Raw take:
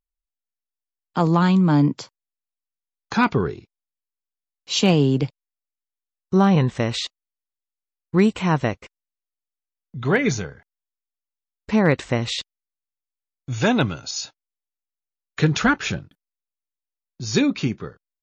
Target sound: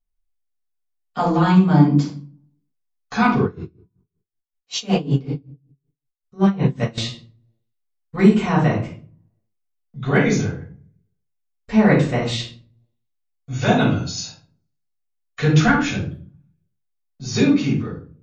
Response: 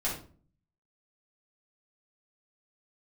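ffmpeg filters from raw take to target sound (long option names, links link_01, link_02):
-filter_complex "[1:a]atrim=start_sample=2205[link_01];[0:a][link_01]afir=irnorm=-1:irlink=0,asettb=1/sr,asplit=3[link_02][link_03][link_04];[link_02]atrim=end=3.444[link_05];[link_03]atrim=start=3.44:end=6.98,asetpts=PTS-STARTPTS,afade=type=in:duration=0.004:curve=qsin,afade=type=out:start_time=3.536:duration=0.004:curve=qsin,aeval=exprs='val(0)*pow(10,-22*(0.5-0.5*cos(2*PI*5.3*n/s))/20)':channel_layout=same[link_06];[link_04]atrim=start=6.976[link_07];[link_05][link_06]acrossfade=duration=0.004:curve1=hsin:curve2=qsin[link_08];[link_08][link_07]acrossfade=duration=0.004:curve1=qsin:curve2=hsin,volume=-4.5dB"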